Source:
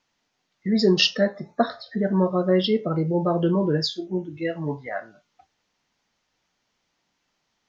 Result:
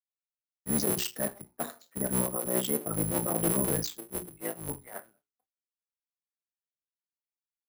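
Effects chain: cycle switcher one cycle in 3, muted; limiter -15 dBFS, peak gain reduction 8 dB; careless resampling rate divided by 4×, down none, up zero stuff; expander -52 dBFS; high shelf 4300 Hz -8 dB; notches 60/120/180/240/300/360/420 Hz; three-band expander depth 100%; gain -6 dB

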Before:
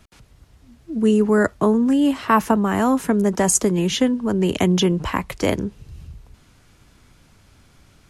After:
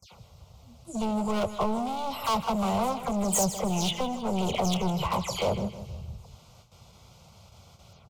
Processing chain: spectral delay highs early, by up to 0.165 s; gate with hold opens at -43 dBFS; HPF 92 Hz 12 dB/oct; bell 10000 Hz -13 dB 0.57 oct; in parallel at -0.5 dB: compressor, threshold -30 dBFS, peak gain reduction 16.5 dB; on the sum: hard clip -19.5 dBFS, distortion -8 dB; fixed phaser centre 710 Hz, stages 4; on a send: feedback echo 0.158 s, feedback 44%, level -13 dB

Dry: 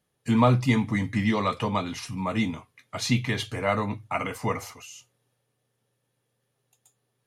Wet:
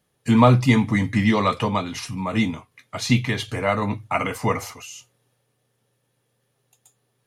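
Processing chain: 1.56–3.82 tremolo saw down 2.6 Hz, depth 40%; gain +5.5 dB

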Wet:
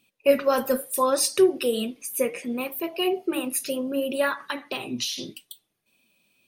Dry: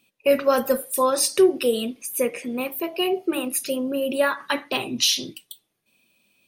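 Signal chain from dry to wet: 4.49–5.18 compressor 6:1, threshold -25 dBFS, peak gain reduction 9 dB; flange 0.7 Hz, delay 0.2 ms, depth 8.2 ms, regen +68%; gain +2.5 dB

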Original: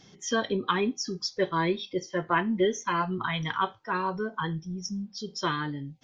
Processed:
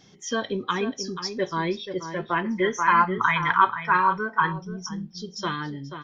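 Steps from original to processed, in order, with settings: vibrato 1.7 Hz 6.5 cents; outdoor echo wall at 83 m, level -9 dB; spectral gain 2.46–4.52, 840–2600 Hz +10 dB

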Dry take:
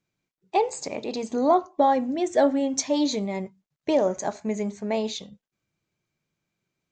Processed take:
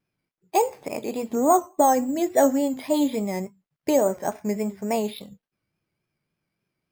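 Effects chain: careless resampling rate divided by 6×, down filtered, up hold; vibrato 3.5 Hz 68 cents; gain +1.5 dB

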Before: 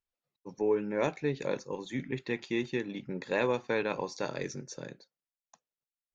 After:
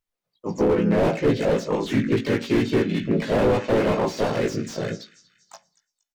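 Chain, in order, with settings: low shelf 86 Hz +4 dB; in parallel at +1 dB: compressor, threshold -47 dBFS, peak gain reduction 22 dB; on the sum: thin delay 0.235 s, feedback 46%, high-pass 1800 Hz, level -19 dB; spectral noise reduction 15 dB; on a send at -15.5 dB: bell 3900 Hz -14.5 dB 2.1 oct + reverb RT60 0.50 s, pre-delay 3 ms; on the sum: harmoniser -3 st -4 dB, +3 st -6 dB; doubler 18 ms -5 dB; slew limiter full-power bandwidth 27 Hz; gain +9 dB

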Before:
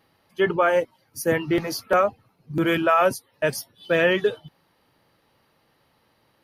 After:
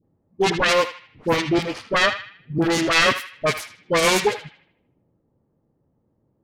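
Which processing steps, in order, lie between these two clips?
self-modulated delay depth 0.59 ms; 1.32–3.48 high shelf 9300 Hz -7.5 dB; dispersion highs, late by 44 ms, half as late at 870 Hz; low-pass opened by the level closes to 330 Hz, open at -22 dBFS; narrowing echo 78 ms, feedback 45%, band-pass 2300 Hz, level -9 dB; gain +3 dB

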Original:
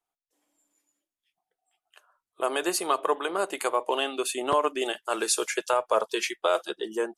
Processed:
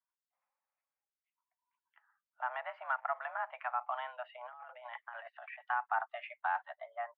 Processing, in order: 2.49–3.14 backlash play -38.5 dBFS; 4.35–5.61 negative-ratio compressor -36 dBFS, ratio -1; mistuned SSB +240 Hz 450–2100 Hz; gain -9 dB

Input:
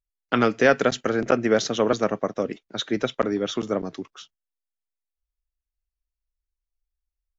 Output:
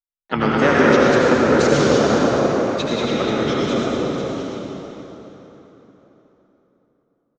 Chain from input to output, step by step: gate with hold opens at -47 dBFS; harmoniser -7 st -6 dB, +4 st -16 dB; echo 0.198 s -4 dB; wow and flutter 120 cents; reverb RT60 4.0 s, pre-delay 68 ms, DRR -5 dB; gain -2 dB

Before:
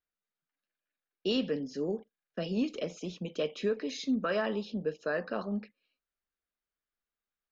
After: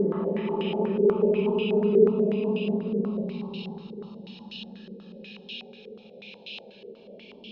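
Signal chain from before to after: Paulstretch 42×, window 0.05 s, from 4.54; stepped low-pass 8.2 Hz 450–2800 Hz; gain +5.5 dB

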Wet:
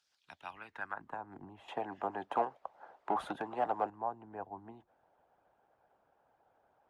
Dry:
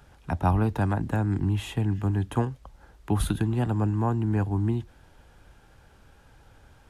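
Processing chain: harmonic-percussive split harmonic -11 dB; 1.68–3.9 overdrive pedal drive 21 dB, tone 7600 Hz, clips at -13.5 dBFS; band-pass sweep 5100 Hz -> 720 Hz, 0.1–1.35; gain -1.5 dB

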